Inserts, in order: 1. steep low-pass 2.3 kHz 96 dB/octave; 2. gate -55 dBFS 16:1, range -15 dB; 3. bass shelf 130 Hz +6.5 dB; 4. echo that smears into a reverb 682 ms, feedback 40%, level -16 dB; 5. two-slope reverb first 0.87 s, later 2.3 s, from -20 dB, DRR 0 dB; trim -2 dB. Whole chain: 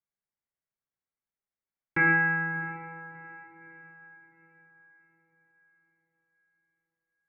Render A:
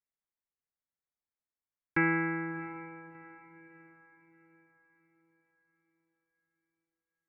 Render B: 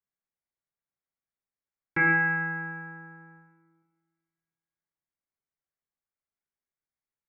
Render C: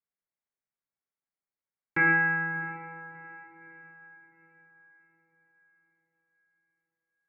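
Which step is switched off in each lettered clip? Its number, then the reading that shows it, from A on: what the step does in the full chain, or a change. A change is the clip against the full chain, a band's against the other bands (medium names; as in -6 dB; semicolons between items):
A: 5, 2 kHz band -8.0 dB; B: 4, momentary loudness spread change -2 LU; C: 3, 125 Hz band -2.0 dB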